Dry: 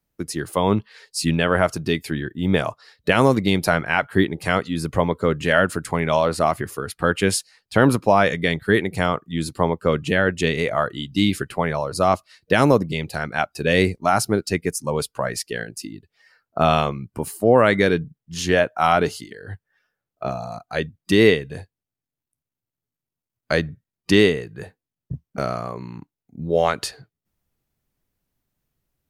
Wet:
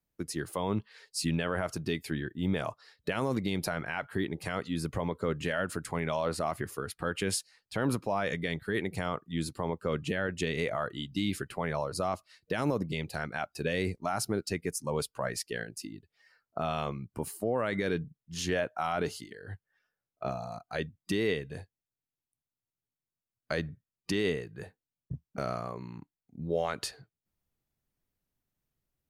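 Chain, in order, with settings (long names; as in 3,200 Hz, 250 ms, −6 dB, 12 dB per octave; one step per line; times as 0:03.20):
brickwall limiter −11.5 dBFS, peak gain reduction 8.5 dB
level −8 dB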